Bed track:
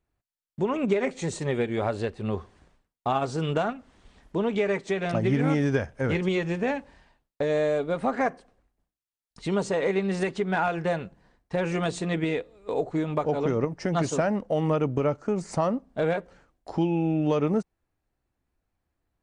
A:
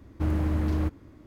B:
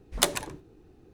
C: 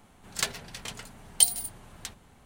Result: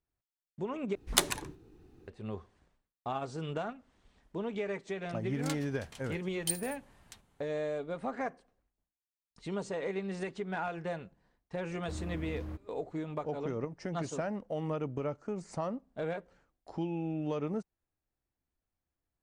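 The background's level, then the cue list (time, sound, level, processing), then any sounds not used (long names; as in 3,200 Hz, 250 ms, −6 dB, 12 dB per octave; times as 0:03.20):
bed track −10.5 dB
0:00.95: overwrite with B −2 dB + parametric band 590 Hz −6.5 dB 0.57 octaves
0:05.07: mix in C −13 dB
0:11.68: mix in A −14.5 dB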